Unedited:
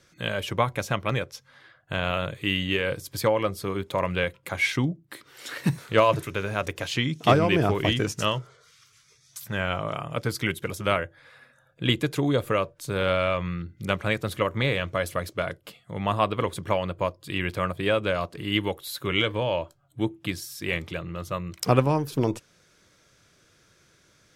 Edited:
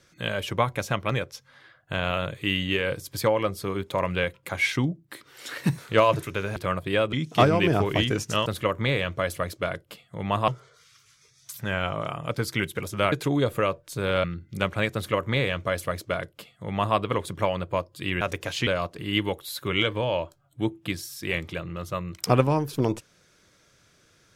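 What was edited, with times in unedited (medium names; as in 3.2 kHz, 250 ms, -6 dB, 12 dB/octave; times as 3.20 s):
6.56–7.02 s: swap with 17.49–18.06 s
10.99–12.04 s: delete
13.16–13.52 s: delete
14.22–16.24 s: copy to 8.35 s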